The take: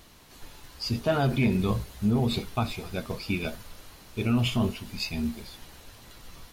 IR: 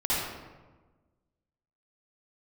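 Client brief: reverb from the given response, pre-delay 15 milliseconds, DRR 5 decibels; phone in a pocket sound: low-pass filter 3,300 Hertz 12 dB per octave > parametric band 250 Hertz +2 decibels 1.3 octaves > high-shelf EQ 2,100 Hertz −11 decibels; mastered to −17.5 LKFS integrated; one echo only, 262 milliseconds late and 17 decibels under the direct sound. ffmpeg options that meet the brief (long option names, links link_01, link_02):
-filter_complex "[0:a]aecho=1:1:262:0.141,asplit=2[link_01][link_02];[1:a]atrim=start_sample=2205,adelay=15[link_03];[link_02][link_03]afir=irnorm=-1:irlink=0,volume=-16dB[link_04];[link_01][link_04]amix=inputs=2:normalize=0,lowpass=3300,equalizer=frequency=250:width_type=o:width=1.3:gain=2,highshelf=frequency=2100:gain=-11,volume=9dB"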